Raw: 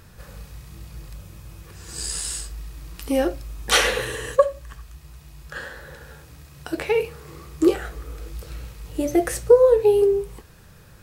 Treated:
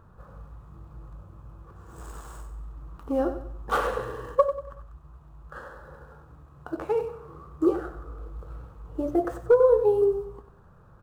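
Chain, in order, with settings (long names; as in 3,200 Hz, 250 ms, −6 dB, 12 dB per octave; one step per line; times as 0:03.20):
running median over 9 samples
gain into a clipping stage and back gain 7 dB
high shelf with overshoot 1,600 Hz −9 dB, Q 3
on a send: repeating echo 94 ms, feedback 37%, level −11 dB
on the sum: level −5.5 dB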